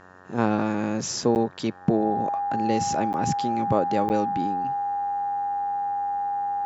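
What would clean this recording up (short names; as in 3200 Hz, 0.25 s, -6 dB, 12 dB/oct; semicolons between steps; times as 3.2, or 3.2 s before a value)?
de-hum 91.9 Hz, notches 20; notch 810 Hz, Q 30; interpolate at 1.35/3.13/4.09, 9.3 ms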